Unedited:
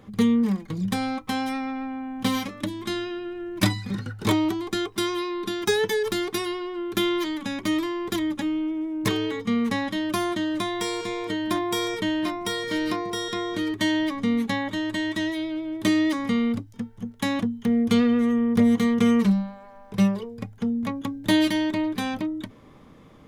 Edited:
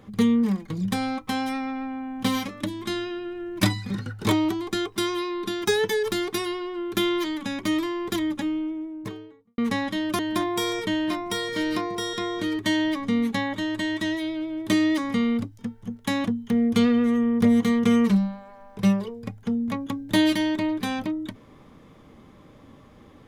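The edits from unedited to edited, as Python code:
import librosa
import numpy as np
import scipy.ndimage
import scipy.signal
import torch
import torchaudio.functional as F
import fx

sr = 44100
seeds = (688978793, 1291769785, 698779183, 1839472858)

y = fx.studio_fade_out(x, sr, start_s=8.28, length_s=1.3)
y = fx.edit(y, sr, fx.cut(start_s=10.19, length_s=1.15), tone=tone)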